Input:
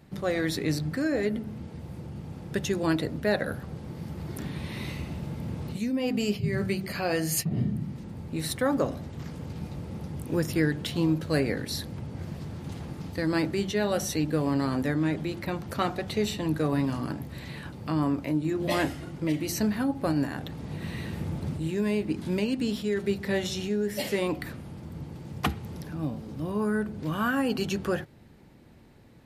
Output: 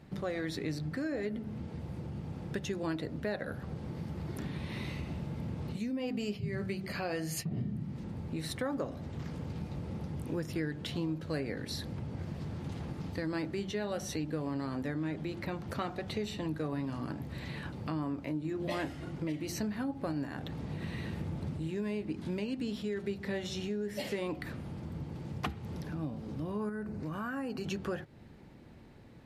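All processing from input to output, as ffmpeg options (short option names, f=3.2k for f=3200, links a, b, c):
-filter_complex "[0:a]asettb=1/sr,asplit=3[a][b][c];[a]atrim=end=26.694[d];[b]atrim=start=26.69:end=27.66,asetpts=PTS-STARTPTS,afade=t=in:d=0.004:c=qsin,afade=t=out:st=0.966:d=0.004:c=qsin,equalizer=f=3.3k:t=o:w=0.32:g=-12.5,acompressor=threshold=-33dB:ratio=2:attack=3.2:release=140:knee=1:detection=peak[e];[c]atrim=start=27.656[f];[d][e]acrossfade=d=0.004:c1=hsin:c2=qsin[g];[g][f]acrossfade=d=0.004:c1=qsin:c2=hsin,highshelf=f=8.4k:g=-11,acompressor=threshold=-36dB:ratio=2.5"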